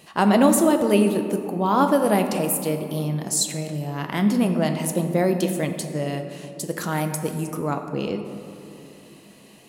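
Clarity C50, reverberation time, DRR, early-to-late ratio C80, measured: 7.5 dB, 2.9 s, 5.5 dB, 8.5 dB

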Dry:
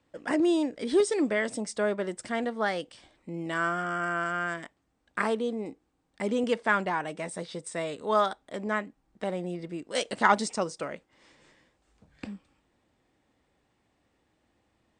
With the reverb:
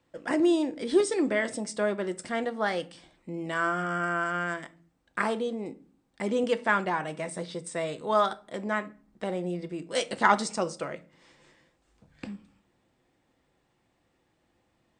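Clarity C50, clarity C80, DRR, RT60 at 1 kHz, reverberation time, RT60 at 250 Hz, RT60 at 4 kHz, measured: 19.0 dB, 24.5 dB, 10.5 dB, 0.40 s, 0.45 s, 0.70 s, 0.30 s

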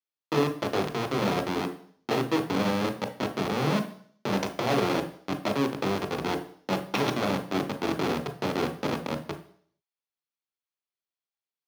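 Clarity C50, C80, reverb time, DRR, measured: 11.0 dB, 15.5 dB, 0.55 s, 6.0 dB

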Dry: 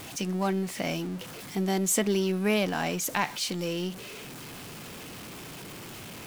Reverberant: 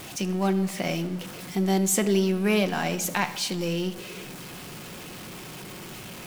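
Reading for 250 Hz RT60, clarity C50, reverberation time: 2.0 s, 14.0 dB, 1.4 s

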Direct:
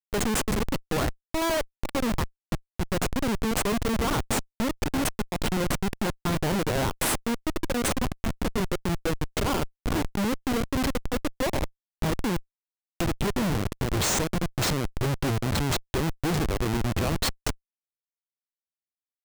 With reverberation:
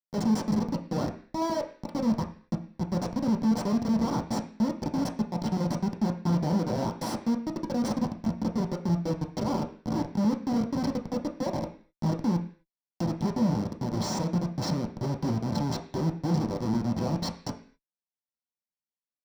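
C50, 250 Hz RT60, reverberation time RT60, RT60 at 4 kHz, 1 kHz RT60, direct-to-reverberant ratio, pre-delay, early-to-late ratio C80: 11.0 dB, 0.55 s, 0.45 s, no reading, 0.45 s, 1.5 dB, 3 ms, 15.5 dB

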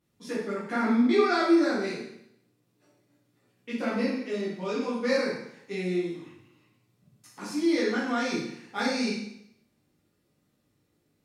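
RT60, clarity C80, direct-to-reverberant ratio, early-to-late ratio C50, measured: 0.75 s, 5.5 dB, -9.5 dB, 1.5 dB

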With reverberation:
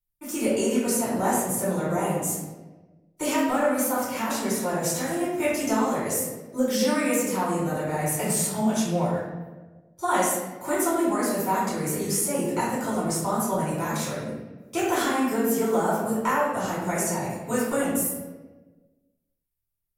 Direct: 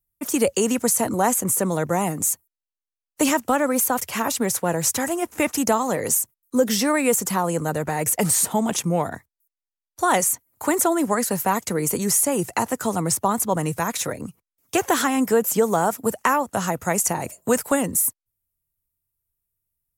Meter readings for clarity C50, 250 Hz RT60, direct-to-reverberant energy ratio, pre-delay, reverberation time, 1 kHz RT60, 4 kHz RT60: -0.5 dB, 1.5 s, -9.5 dB, 3 ms, 1.3 s, 1.1 s, 0.80 s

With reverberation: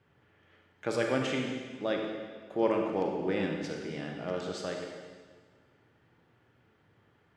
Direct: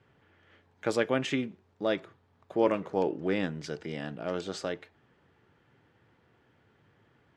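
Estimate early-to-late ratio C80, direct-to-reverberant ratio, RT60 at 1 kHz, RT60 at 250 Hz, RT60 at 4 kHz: 4.0 dB, 0.5 dB, 1.6 s, 1.7 s, 1.5 s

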